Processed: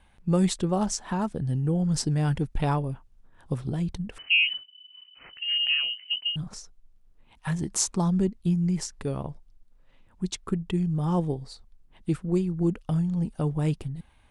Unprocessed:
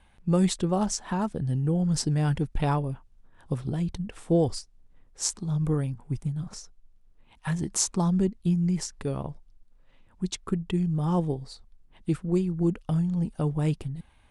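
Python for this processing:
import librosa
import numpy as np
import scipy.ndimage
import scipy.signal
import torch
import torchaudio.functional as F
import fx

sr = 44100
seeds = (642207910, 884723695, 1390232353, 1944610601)

y = fx.freq_invert(x, sr, carrier_hz=3000, at=(4.18, 6.36))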